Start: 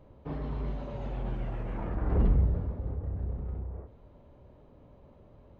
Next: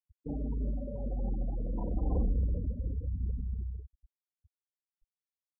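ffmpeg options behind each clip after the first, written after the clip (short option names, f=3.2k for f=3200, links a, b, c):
-af "afftfilt=real='re*gte(hypot(re,im),0.0316)':imag='im*gte(hypot(re,im),0.0316)':win_size=1024:overlap=0.75,aecho=1:1:3.9:0.5,acompressor=threshold=-25dB:ratio=6"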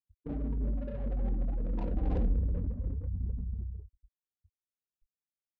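-filter_complex "[0:a]adynamicsmooth=sensitivity=8:basefreq=500,crystalizer=i=3.5:c=0,asplit=2[a][b];[b]adelay=22,volume=-11.5dB[c];[a][c]amix=inputs=2:normalize=0"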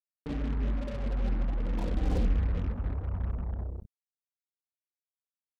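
-af "acrusher=bits=6:mix=0:aa=0.5,volume=2dB"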